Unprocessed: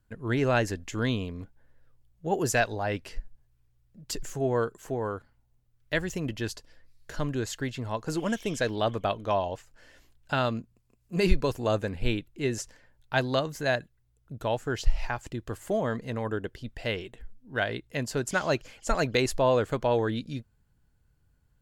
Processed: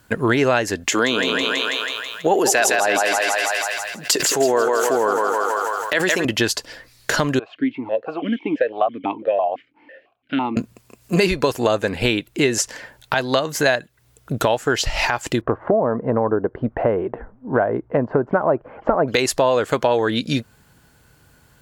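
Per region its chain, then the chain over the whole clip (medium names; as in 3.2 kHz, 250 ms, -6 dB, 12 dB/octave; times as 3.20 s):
0.90–6.25 s: high-pass 270 Hz + thinning echo 163 ms, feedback 58%, high-pass 430 Hz, level -5 dB + decay stretcher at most 27 dB/s
7.39–10.57 s: distance through air 390 m + stepped vowel filter 6 Hz
15.41–19.08 s: low-pass 1.1 kHz 24 dB/octave + tape noise reduction on one side only encoder only
whole clip: high-pass 390 Hz 6 dB/octave; compression 5:1, threshold -41 dBFS; loudness maximiser +28 dB; trim -3 dB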